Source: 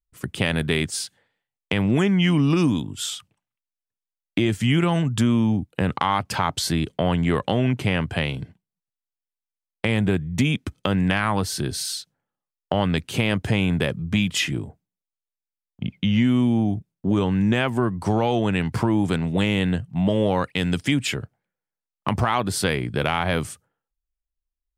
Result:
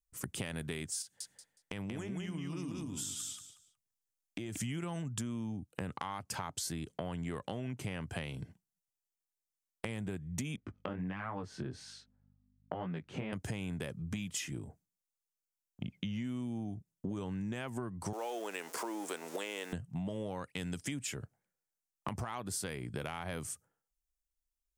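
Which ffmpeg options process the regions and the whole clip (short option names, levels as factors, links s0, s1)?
-filter_complex "[0:a]asettb=1/sr,asplit=3[s0][s1][s2];[s0]atrim=end=1.024[s3];[s1]atrim=start=1.02:end=4.57,asetpts=PTS-STARTPTS,afade=t=in:d=0.004:c=qsin,afade=t=out:st=3.546:d=0.004:c=qsin,acompressor=threshold=0.0112:ratio=2:attack=3.2:release=140:knee=1:detection=peak,aecho=1:1:183|366|549:0.708|0.149|0.0312,atrim=end_sample=156555[s4];[s2]atrim=start=4.566[s5];[s3][s4]acrossfade=d=0.004:c1=hsin:c2=qsin[s6];[s6][s5]acrossfade=d=0.004:c1=qsin:c2=hsin,asettb=1/sr,asplit=3[s7][s8][s9];[s7]atrim=end=10.564[s10];[s8]atrim=start=10.56:end=13.33,asetpts=PTS-STARTPTS,afade=t=in:d=0.004:c=qsin,afade=t=out:st=2.766:d=0.004:c=qsin,aeval=exprs='val(0)+0.00178*(sin(2*PI*50*n/s)+sin(2*PI*2*50*n/s)/2+sin(2*PI*3*50*n/s)/3+sin(2*PI*4*50*n/s)/4+sin(2*PI*5*50*n/s)/5)':c=same,highpass=100,lowpass=2000,flanger=delay=16.5:depth=7.1:speed=1.3[s11];[s9]atrim=start=13.326[s12];[s10][s11]acrossfade=d=0.004:c1=hsin:c2=qsin[s13];[s13][s12]acrossfade=d=0.004:c1=qsin:c2=hsin,asettb=1/sr,asplit=3[s14][s15][s16];[s14]atrim=end=18.134[s17];[s15]atrim=start=18.13:end=19.73,asetpts=PTS-STARTPTS,afade=t=in:d=0.004:c=qsin,afade=t=out:st=1.596:d=0.004:c=qsin,aeval=exprs='val(0)+0.5*0.0266*sgn(val(0))':c=same,highpass=f=370:w=0.5412,highpass=f=370:w=1.3066[s18];[s16]atrim=start=19.726[s19];[s17][s18]acrossfade=d=0.004:c1=hsin:c2=qsin[s20];[s20][s19]acrossfade=d=0.004:c1=qsin:c2=hsin,highshelf=f=5000:t=q:w=1.5:g=7,acompressor=threshold=0.0282:ratio=6,volume=0.531"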